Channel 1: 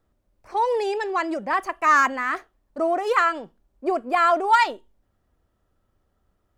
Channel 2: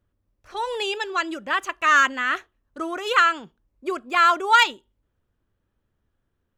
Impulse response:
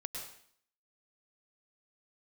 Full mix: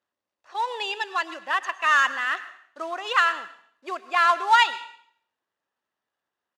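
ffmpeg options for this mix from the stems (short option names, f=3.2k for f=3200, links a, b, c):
-filter_complex "[0:a]volume=-15dB[a];[1:a]aecho=1:1:1.1:0.36,acrusher=bits=4:mode=log:mix=0:aa=0.000001,volume=-4.5dB,asplit=2[b][c];[c]volume=-8dB[d];[2:a]atrim=start_sample=2205[e];[d][e]afir=irnorm=-1:irlink=0[f];[a][b][f]amix=inputs=3:normalize=0,highpass=570,lowpass=5.9k"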